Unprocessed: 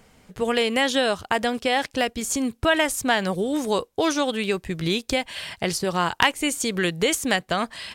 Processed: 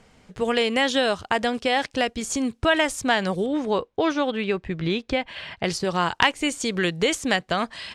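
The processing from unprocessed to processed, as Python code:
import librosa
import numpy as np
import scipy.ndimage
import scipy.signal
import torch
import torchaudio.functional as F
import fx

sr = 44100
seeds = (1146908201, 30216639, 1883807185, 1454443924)

y = fx.lowpass(x, sr, hz=fx.steps((0.0, 7600.0), (3.46, 3000.0), (5.64, 6800.0)), slope=12)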